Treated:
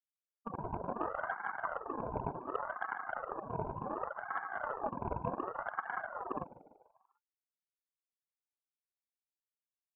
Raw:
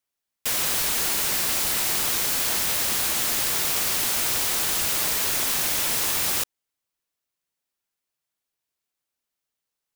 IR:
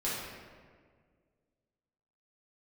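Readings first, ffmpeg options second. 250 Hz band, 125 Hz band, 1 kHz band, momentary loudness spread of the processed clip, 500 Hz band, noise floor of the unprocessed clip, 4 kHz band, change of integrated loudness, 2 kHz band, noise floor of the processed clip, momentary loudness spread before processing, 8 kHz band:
-5.5 dB, -5.0 dB, -3.5 dB, 4 LU, -4.0 dB, -85 dBFS, under -40 dB, -18.5 dB, -12.5 dB, under -85 dBFS, 1 LU, under -40 dB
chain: -filter_complex "[0:a]asplit=2[a][b];[1:a]atrim=start_sample=2205[c];[b][c]afir=irnorm=-1:irlink=0,volume=-24dB[d];[a][d]amix=inputs=2:normalize=0,alimiter=limit=-21dB:level=0:latency=1,lowpass=2.7k,lowshelf=f=570:t=q:w=3:g=7,afftfilt=real='re*gte(hypot(re,im),0.0631)':imag='im*gte(hypot(re,im),0.0631)':win_size=1024:overlap=0.75,aeval=exprs='0.0708*(cos(1*acos(clip(val(0)/0.0708,-1,1)))-cos(1*PI/2))+0.00708*(cos(7*acos(clip(val(0)/0.0708,-1,1)))-cos(7*PI/2))':c=same,asuperstop=centerf=1300:order=12:qfactor=2.4,equalizer=f=90:w=1.5:g=12,asplit=6[e][f][g][h][i][j];[f]adelay=147,afreqshift=-71,volume=-16.5dB[k];[g]adelay=294,afreqshift=-142,volume=-22dB[l];[h]adelay=441,afreqshift=-213,volume=-27.5dB[m];[i]adelay=588,afreqshift=-284,volume=-33dB[n];[j]adelay=735,afreqshift=-355,volume=-38.6dB[o];[e][k][l][m][n][o]amix=inputs=6:normalize=0,aeval=exprs='val(0)*sin(2*PI*870*n/s+870*0.4/0.68*sin(2*PI*0.68*n/s))':c=same,volume=3.5dB"

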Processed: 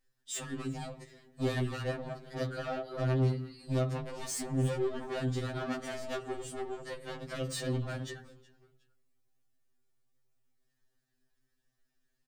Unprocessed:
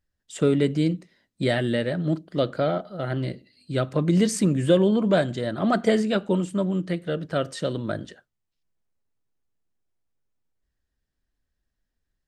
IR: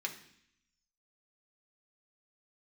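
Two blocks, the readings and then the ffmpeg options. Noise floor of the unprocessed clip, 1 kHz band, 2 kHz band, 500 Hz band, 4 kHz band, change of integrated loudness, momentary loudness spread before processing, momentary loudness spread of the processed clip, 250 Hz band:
-80 dBFS, -9.5 dB, -9.5 dB, -12.5 dB, -9.5 dB, -11.5 dB, 11 LU, 10 LU, -14.5 dB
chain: -filter_complex "[0:a]highshelf=f=4k:g=6.5,acompressor=threshold=-26dB:ratio=5,volume=31dB,asoftclip=hard,volume=-31dB,asplit=3[a][b][c];[b]adelay=366,afreqshift=-98,volume=-22.5dB[d];[c]adelay=732,afreqshift=-196,volume=-31.9dB[e];[a][d][e]amix=inputs=3:normalize=0,asoftclip=type=tanh:threshold=-31dB,asplit=2[f][g];[1:a]atrim=start_sample=2205,lowshelf=f=210:g=5.5,highshelf=f=2.1k:g=-11.5[h];[g][h]afir=irnorm=-1:irlink=0,volume=-2.5dB[i];[f][i]amix=inputs=2:normalize=0,afftfilt=real='re*2.45*eq(mod(b,6),0)':imag='im*2.45*eq(mod(b,6),0)':win_size=2048:overlap=0.75"

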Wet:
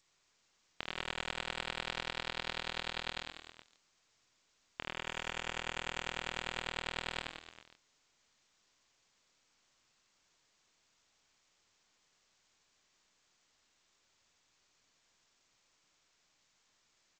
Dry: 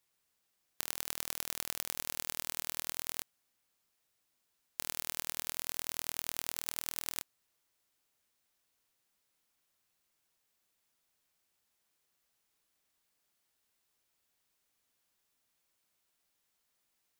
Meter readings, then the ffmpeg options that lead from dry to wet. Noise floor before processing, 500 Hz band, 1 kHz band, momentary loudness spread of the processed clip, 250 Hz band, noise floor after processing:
-80 dBFS, +6.0 dB, +6.5 dB, 9 LU, +4.0 dB, -76 dBFS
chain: -af "aecho=1:1:80|172|277.8|399.5|539.4:0.631|0.398|0.251|0.158|0.1,volume=4.5dB" -ar 16000 -c:a g722

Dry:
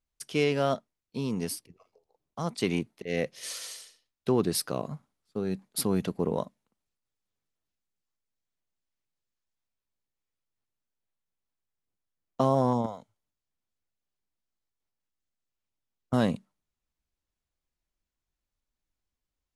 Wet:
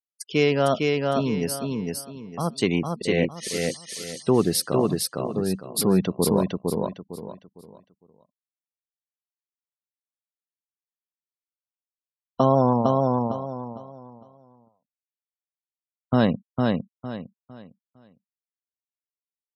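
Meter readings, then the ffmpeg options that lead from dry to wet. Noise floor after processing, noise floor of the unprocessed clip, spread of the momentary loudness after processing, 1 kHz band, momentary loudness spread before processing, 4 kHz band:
under -85 dBFS, under -85 dBFS, 15 LU, +7.5 dB, 14 LU, +7.0 dB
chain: -af "afftfilt=real='re*gte(hypot(re,im),0.00794)':imag='im*gte(hypot(re,im),0.00794)':win_size=1024:overlap=0.75,aecho=1:1:456|912|1368|1824:0.708|0.205|0.0595|0.0173,volume=5.5dB"

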